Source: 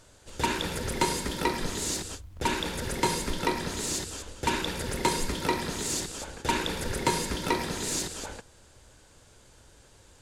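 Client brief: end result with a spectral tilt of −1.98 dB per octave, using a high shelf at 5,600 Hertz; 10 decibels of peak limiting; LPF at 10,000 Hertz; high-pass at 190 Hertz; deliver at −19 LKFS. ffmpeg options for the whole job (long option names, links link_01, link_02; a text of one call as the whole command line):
ffmpeg -i in.wav -af "highpass=190,lowpass=10000,highshelf=frequency=5600:gain=3,volume=13dB,alimiter=limit=-8dB:level=0:latency=1" out.wav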